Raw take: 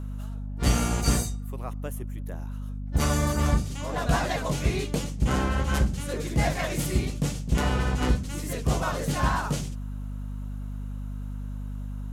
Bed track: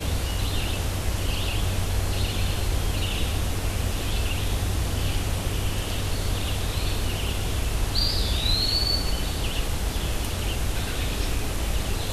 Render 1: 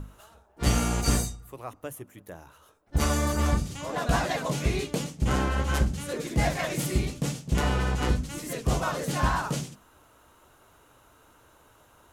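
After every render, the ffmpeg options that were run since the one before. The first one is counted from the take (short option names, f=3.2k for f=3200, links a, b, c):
-af "bandreject=f=50:t=h:w=6,bandreject=f=100:t=h:w=6,bandreject=f=150:t=h:w=6,bandreject=f=200:t=h:w=6,bandreject=f=250:t=h:w=6"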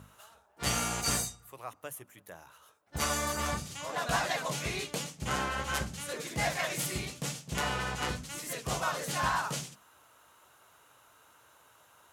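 -af "highpass=150,equalizer=f=280:w=0.65:g=-11"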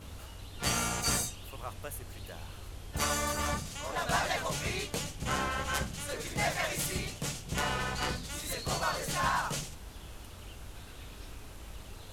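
-filter_complex "[1:a]volume=-20dB[a];[0:a][a]amix=inputs=2:normalize=0"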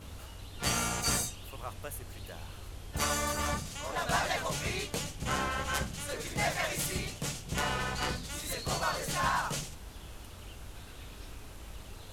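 -af anull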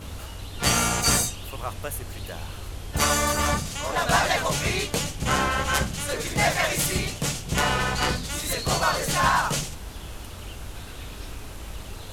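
-af "volume=9dB"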